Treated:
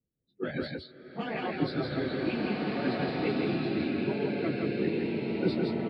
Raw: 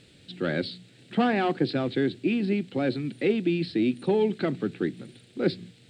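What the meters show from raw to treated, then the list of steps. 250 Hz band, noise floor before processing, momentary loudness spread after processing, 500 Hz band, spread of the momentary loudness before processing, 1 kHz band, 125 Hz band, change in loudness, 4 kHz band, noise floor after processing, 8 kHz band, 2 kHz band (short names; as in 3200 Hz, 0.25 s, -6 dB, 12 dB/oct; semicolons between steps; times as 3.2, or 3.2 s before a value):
-3.5 dB, -56 dBFS, 7 LU, -4.5 dB, 8 LU, -4.5 dB, -2.5 dB, -4.0 dB, -3.5 dB, -76 dBFS, n/a, -2.5 dB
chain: phase scrambler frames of 50 ms; spectral noise reduction 22 dB; low shelf 110 Hz +5 dB; harmonic-percussive split harmonic -8 dB; low-pass opened by the level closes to 590 Hz, open at -23 dBFS; on a send: echo 0.165 s -3 dB; on the sum: bloom reverb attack 1.69 s, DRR -2 dB; gain -5 dB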